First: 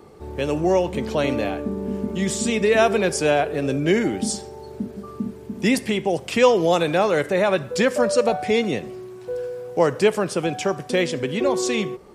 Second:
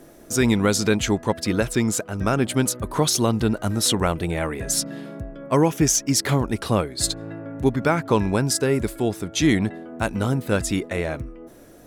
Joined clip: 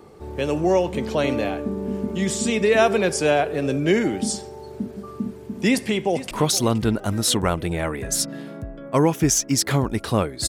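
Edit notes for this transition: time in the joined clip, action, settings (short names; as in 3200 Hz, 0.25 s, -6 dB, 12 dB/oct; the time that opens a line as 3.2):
first
5.68–6.31 echo throw 0.47 s, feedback 40%, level -14.5 dB
6.31 switch to second from 2.89 s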